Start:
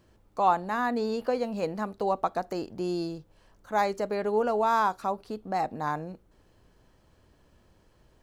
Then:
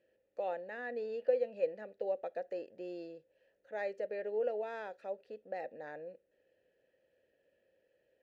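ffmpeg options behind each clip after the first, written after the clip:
-filter_complex "[0:a]asplit=3[s0][s1][s2];[s0]bandpass=f=530:t=q:w=8,volume=1[s3];[s1]bandpass=f=1840:t=q:w=8,volume=0.501[s4];[s2]bandpass=f=2480:t=q:w=8,volume=0.355[s5];[s3][s4][s5]amix=inputs=3:normalize=0,volume=1.12"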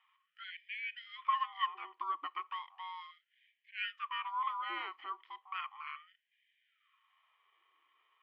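-af "lowpass=f=2400:t=q:w=6.3,aeval=exprs='val(0)*sin(2*PI*570*n/s)':c=same,afftfilt=real='re*gte(b*sr/1024,290*pow(1600/290,0.5+0.5*sin(2*PI*0.35*pts/sr)))':imag='im*gte(b*sr/1024,290*pow(1600/290,0.5+0.5*sin(2*PI*0.35*pts/sr)))':win_size=1024:overlap=0.75,volume=1.5"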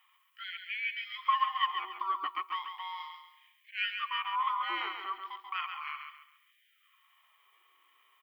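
-af "aemphasis=mode=production:type=50fm,aecho=1:1:137|274|411|548:0.473|0.151|0.0485|0.0155,volume=1.58"

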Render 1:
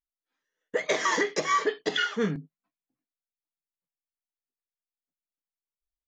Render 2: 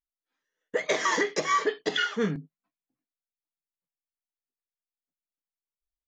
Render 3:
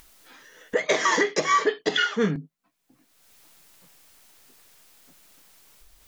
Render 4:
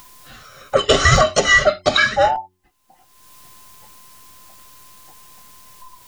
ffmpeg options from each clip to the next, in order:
-af anull
-af "acompressor=mode=upward:threshold=0.0282:ratio=2.5,volume=1.58"
-af "afftfilt=real='real(if(between(b,1,1008),(2*floor((b-1)/48)+1)*48-b,b),0)':imag='imag(if(between(b,1,1008),(2*floor((b-1)/48)+1)*48-b,b),0)*if(between(b,1,1008),-1,1)':win_size=2048:overlap=0.75,bass=f=250:g=8,treble=f=4000:g=2,bandreject=f=91.76:t=h:w=4,bandreject=f=183.52:t=h:w=4,bandreject=f=275.28:t=h:w=4,bandreject=f=367.04:t=h:w=4,volume=2.37"

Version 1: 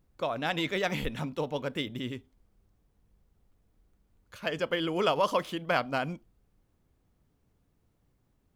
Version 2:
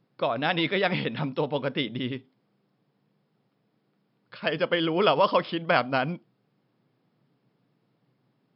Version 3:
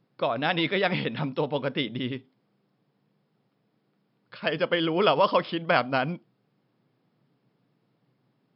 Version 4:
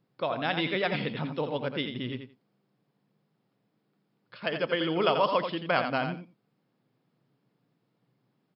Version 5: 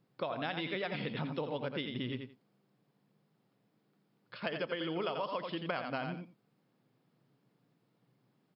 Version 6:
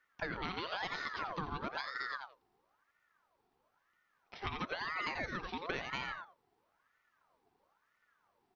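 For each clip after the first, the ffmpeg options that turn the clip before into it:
-af "afftfilt=real='re*between(b*sr/4096,110,5400)':imag='im*between(b*sr/4096,110,5400)':win_size=4096:overlap=0.75,volume=1.78"
-af anull
-af "aecho=1:1:86|172:0.422|0.0633,volume=0.631"
-af "acompressor=threshold=0.0224:ratio=8"
-af "aeval=exprs='val(0)*sin(2*PI*1100*n/s+1100*0.5/1*sin(2*PI*1*n/s))':c=same"

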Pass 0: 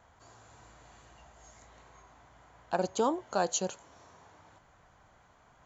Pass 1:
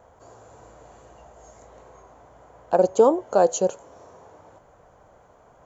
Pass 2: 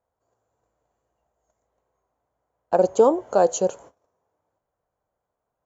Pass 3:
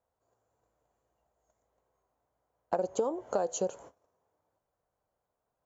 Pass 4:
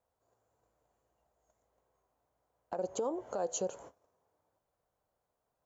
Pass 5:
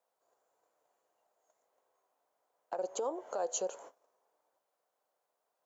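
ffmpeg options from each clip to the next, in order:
-af "equalizer=f=500:t=o:w=1:g=11,equalizer=f=2000:t=o:w=1:g=-5,equalizer=f=4000:t=o:w=1:g=-7,volume=1.78"
-af "agate=range=0.0447:threshold=0.00708:ratio=16:detection=peak"
-af "acompressor=threshold=0.0708:ratio=16,volume=0.708"
-af "alimiter=level_in=1.06:limit=0.0631:level=0:latency=1:release=108,volume=0.944"
-af "highpass=450,volume=1.19"

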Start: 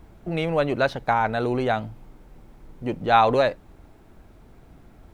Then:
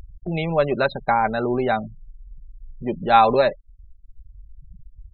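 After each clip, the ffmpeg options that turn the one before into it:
-af "afftfilt=real='re*gte(hypot(re,im),0.0282)':imag='im*gte(hypot(re,im),0.0282)':win_size=1024:overlap=0.75,aecho=1:1:5.1:0.46,acompressor=mode=upward:threshold=0.0251:ratio=2.5,volume=1.12"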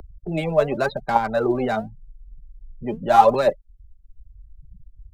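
-filter_complex "[0:a]acrossover=split=120|330|1100[s0][s1][s2][s3];[s2]aphaser=in_gain=1:out_gain=1:delay=4.9:decay=0.79:speed=0.86:type=triangular[s4];[s3]asoftclip=type=hard:threshold=0.0473[s5];[s0][s1][s4][s5]amix=inputs=4:normalize=0,volume=0.841"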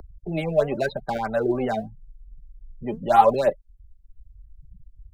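-af "afftfilt=real='re*(1-between(b*sr/1024,990*pow(6500/990,0.5+0.5*sin(2*PI*3.2*pts/sr))/1.41,990*pow(6500/990,0.5+0.5*sin(2*PI*3.2*pts/sr))*1.41))':imag='im*(1-between(b*sr/1024,990*pow(6500/990,0.5+0.5*sin(2*PI*3.2*pts/sr))/1.41,990*pow(6500/990,0.5+0.5*sin(2*PI*3.2*pts/sr))*1.41))':win_size=1024:overlap=0.75,volume=0.794"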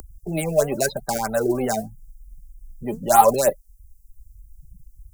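-af "aexciter=amount=15.7:drive=3.9:freq=5300,volume=1.19"

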